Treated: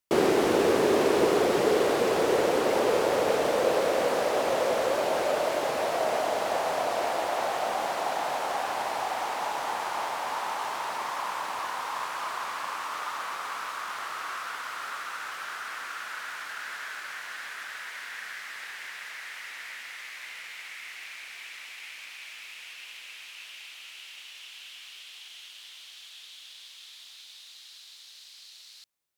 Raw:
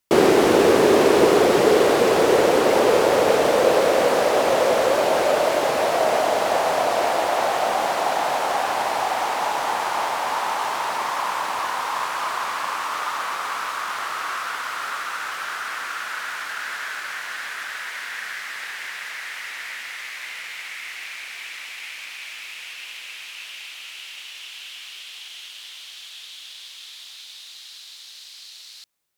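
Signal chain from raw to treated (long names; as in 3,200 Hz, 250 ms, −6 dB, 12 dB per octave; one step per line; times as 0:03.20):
level −7.5 dB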